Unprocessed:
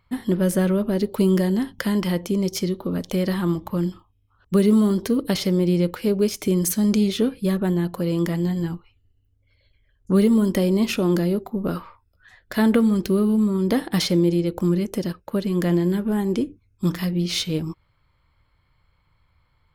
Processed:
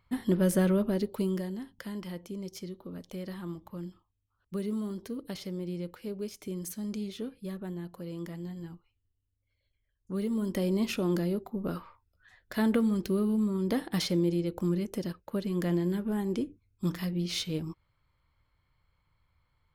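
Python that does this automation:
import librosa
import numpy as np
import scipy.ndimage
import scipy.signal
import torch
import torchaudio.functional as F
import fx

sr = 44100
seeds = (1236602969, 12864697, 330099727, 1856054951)

y = fx.gain(x, sr, db=fx.line((0.82, -5.0), (1.58, -16.5), (10.12, -16.5), (10.68, -8.5)))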